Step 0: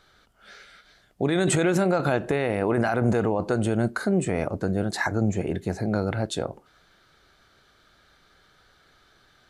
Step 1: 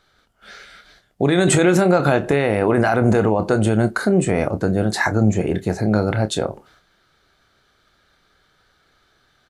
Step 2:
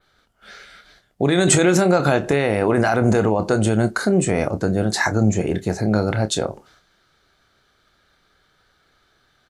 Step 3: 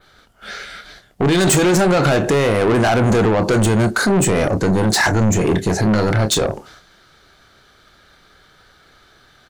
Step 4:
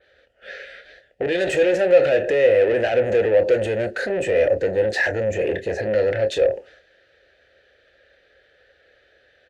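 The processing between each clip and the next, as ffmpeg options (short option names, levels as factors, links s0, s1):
-filter_complex "[0:a]agate=range=0.398:threshold=0.00141:ratio=16:detection=peak,asplit=2[s0][s1];[s1]adelay=28,volume=0.266[s2];[s0][s2]amix=inputs=2:normalize=0,volume=2.11"
-af "adynamicequalizer=threshold=0.00708:dfrequency=6100:dqfactor=1.1:tfrequency=6100:tqfactor=1.1:attack=5:release=100:ratio=0.375:range=3.5:mode=boostabove:tftype=bell,volume=0.891"
-filter_complex "[0:a]asplit=2[s0][s1];[s1]alimiter=limit=0.299:level=0:latency=1:release=34,volume=1.41[s2];[s0][s2]amix=inputs=2:normalize=0,asoftclip=type=tanh:threshold=0.188,volume=1.41"
-filter_complex "[0:a]asplit=3[s0][s1][s2];[s0]bandpass=f=530:t=q:w=8,volume=1[s3];[s1]bandpass=f=1840:t=q:w=8,volume=0.501[s4];[s2]bandpass=f=2480:t=q:w=8,volume=0.355[s5];[s3][s4][s5]amix=inputs=3:normalize=0,lowshelf=f=110:t=q:w=1.5:g=13.5,volume=2.37"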